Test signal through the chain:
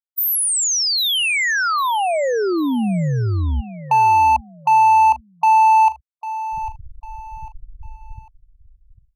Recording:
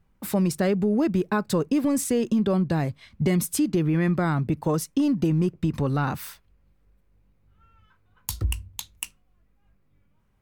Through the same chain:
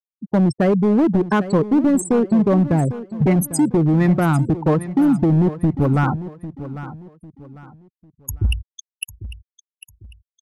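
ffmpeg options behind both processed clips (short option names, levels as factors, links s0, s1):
-af "acontrast=39,anlmdn=398,afftfilt=real='re*gte(hypot(re,im),0.141)':imag='im*gte(hypot(re,im),0.141)':win_size=1024:overlap=0.75,volume=5.01,asoftclip=hard,volume=0.2,aecho=1:1:799|1598|2397:0.2|0.0658|0.0217,volume=1.33"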